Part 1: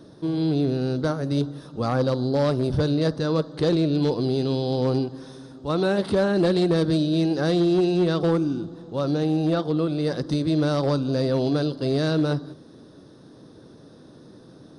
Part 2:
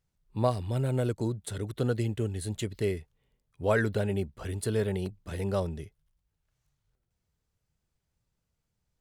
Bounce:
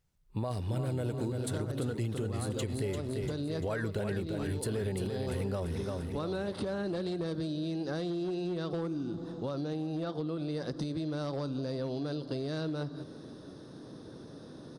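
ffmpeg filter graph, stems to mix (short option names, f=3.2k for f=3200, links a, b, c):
-filter_complex "[0:a]acompressor=threshold=-30dB:ratio=6,adelay=500,volume=0dB,asplit=2[a][b];[b]volume=-23.5dB[c];[1:a]alimiter=limit=-22dB:level=0:latency=1:release=20,volume=2.5dB,asplit=3[d][e][f];[e]volume=-6.5dB[g];[f]apad=whole_len=674196[h];[a][h]sidechaincompress=threshold=-31dB:ratio=8:attack=38:release=212[i];[c][g]amix=inputs=2:normalize=0,aecho=0:1:344|688|1032|1376|1720|2064|2408:1|0.47|0.221|0.104|0.0488|0.0229|0.0108[j];[i][d][j]amix=inputs=3:normalize=0,acompressor=threshold=-31dB:ratio=4"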